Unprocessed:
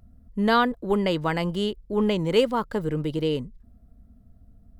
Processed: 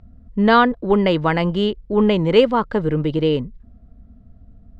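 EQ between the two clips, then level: low-pass 3.5 kHz 12 dB/octave; +7.0 dB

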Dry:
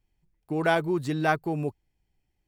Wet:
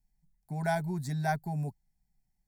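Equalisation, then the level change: static phaser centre 320 Hz, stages 6; static phaser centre 1.2 kHz, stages 4; +2.0 dB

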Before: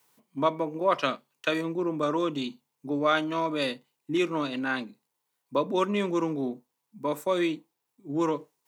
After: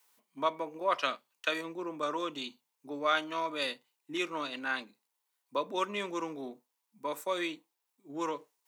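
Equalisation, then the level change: high-pass 900 Hz 6 dB/octave; -1.5 dB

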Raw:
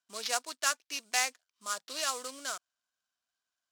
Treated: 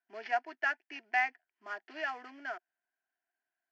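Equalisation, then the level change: distance through air 190 m; cabinet simulation 190–4500 Hz, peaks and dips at 370 Hz +8 dB, 690 Hz +7 dB, 1.2 kHz +4 dB, 1.8 kHz +8 dB, 3.9 kHz +4 dB; static phaser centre 780 Hz, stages 8; 0.0 dB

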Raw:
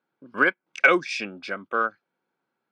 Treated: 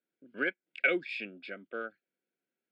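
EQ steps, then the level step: band-pass 200–6500 Hz; Butterworth band-stop 840 Hz, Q 6.4; static phaser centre 2.6 kHz, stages 4; -7.0 dB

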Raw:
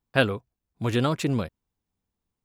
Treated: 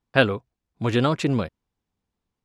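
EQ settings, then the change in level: distance through air 62 m; bass shelf 150 Hz -3.5 dB; +4.0 dB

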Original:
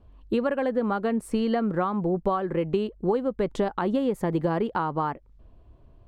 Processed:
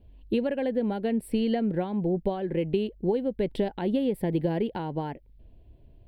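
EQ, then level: treble shelf 6.5 kHz +5.5 dB; static phaser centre 2.9 kHz, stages 4; 0.0 dB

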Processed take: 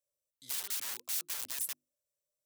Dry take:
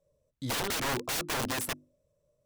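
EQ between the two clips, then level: pre-emphasis filter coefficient 0.97; -2.0 dB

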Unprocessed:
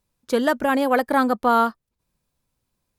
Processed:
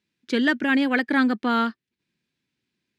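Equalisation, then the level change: band-pass 180–3500 Hz; bass shelf 300 Hz -6 dB; high-order bell 790 Hz -15.5 dB; +6.5 dB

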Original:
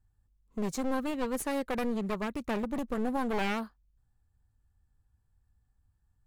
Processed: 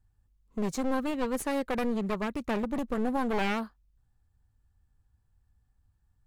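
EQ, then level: treble shelf 7.6 kHz -4 dB; +2.0 dB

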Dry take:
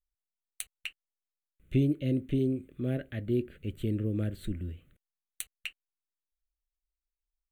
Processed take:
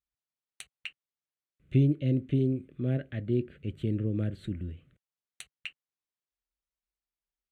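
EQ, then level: high-pass 62 Hz; distance through air 74 m; peaking EQ 140 Hz +5 dB 0.57 oct; 0.0 dB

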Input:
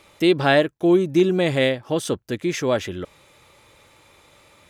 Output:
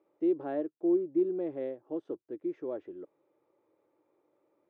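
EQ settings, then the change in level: ladder band-pass 350 Hz, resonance 60%; peaking EQ 240 Hz -9 dB 0.8 oct; -2.5 dB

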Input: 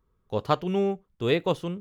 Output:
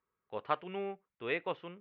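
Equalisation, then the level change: high-pass 850 Hz 6 dB/octave; resonant low-pass 2.3 kHz, resonance Q 1.9; distance through air 190 m; -5.5 dB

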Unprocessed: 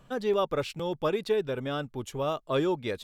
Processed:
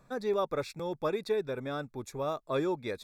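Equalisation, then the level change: Butterworth band-stop 3 kHz, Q 3.4; bass shelf 160 Hz -4 dB; -3.0 dB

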